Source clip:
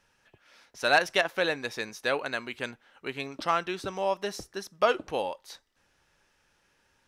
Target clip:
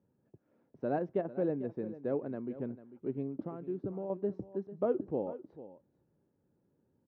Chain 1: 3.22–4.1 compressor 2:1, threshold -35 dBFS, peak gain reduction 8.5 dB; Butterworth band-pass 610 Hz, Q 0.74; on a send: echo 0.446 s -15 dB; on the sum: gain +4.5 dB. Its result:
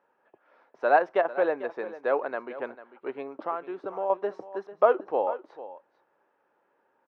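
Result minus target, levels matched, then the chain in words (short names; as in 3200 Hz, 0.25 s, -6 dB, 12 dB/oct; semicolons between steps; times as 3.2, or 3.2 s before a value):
250 Hz band -12.0 dB
3.22–4.1 compressor 2:1, threshold -35 dBFS, peak gain reduction 8.5 dB; Butterworth band-pass 200 Hz, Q 0.74; on a send: echo 0.446 s -15 dB; on the sum: gain +4.5 dB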